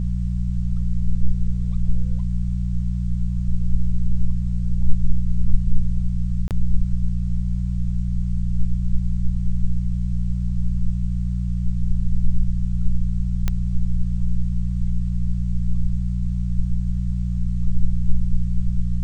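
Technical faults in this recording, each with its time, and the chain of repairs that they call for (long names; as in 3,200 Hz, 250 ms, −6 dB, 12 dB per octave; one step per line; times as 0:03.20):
mains hum 60 Hz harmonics 3 −23 dBFS
0:06.48–0:06.51: drop-out 28 ms
0:13.48: click −9 dBFS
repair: click removal
hum removal 60 Hz, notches 3
repair the gap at 0:06.48, 28 ms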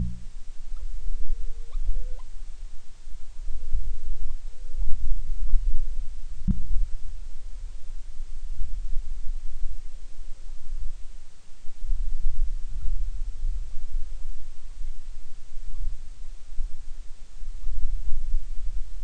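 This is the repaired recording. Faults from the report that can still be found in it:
none of them is left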